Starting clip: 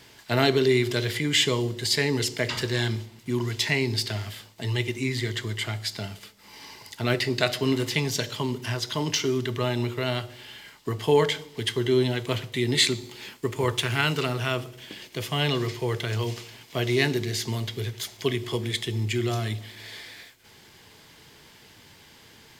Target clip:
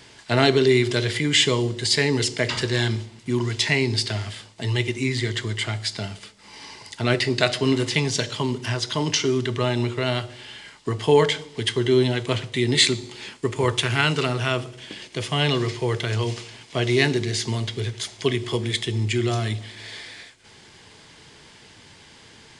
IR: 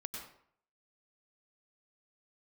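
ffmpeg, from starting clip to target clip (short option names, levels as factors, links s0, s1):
-af "aresample=22050,aresample=44100,volume=1.5"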